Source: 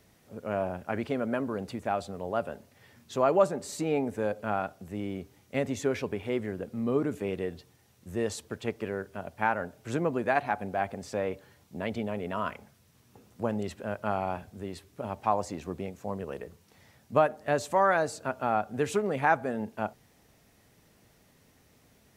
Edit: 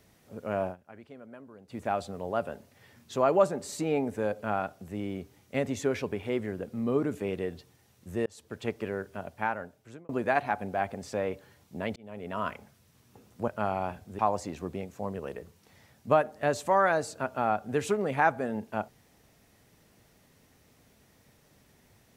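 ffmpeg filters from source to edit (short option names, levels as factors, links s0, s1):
-filter_complex "[0:a]asplit=8[s0][s1][s2][s3][s4][s5][s6][s7];[s0]atrim=end=0.76,asetpts=PTS-STARTPTS,afade=t=out:st=0.63:d=0.13:c=qsin:silence=0.133352[s8];[s1]atrim=start=0.76:end=1.69,asetpts=PTS-STARTPTS,volume=0.133[s9];[s2]atrim=start=1.69:end=8.26,asetpts=PTS-STARTPTS,afade=t=in:d=0.13:c=qsin:silence=0.133352,afade=t=out:st=6.566:d=0.004:c=hsin[s10];[s3]atrim=start=8.26:end=10.09,asetpts=PTS-STARTPTS,afade=t=in:d=0.38,afade=t=out:st=0.94:d=0.89[s11];[s4]atrim=start=10.09:end=11.96,asetpts=PTS-STARTPTS,afade=t=in:d=0.004:c=hsin,afade=t=out:st=1.866:d=0.004:c=hsin[s12];[s5]atrim=start=11.96:end=13.482,asetpts=PTS-STARTPTS,afade=t=in:d=0.47[s13];[s6]atrim=start=13.938:end=14.652[s14];[s7]atrim=start=15.238[s15];[s8][s9][s10][s11][s12][s13]concat=n=6:v=0:a=1[s16];[s16][s14]acrossfade=d=0.004:c1=hsin:c2=hsin[s17];[s17][s15]acrossfade=d=0.004:c1=hsin:c2=hsin"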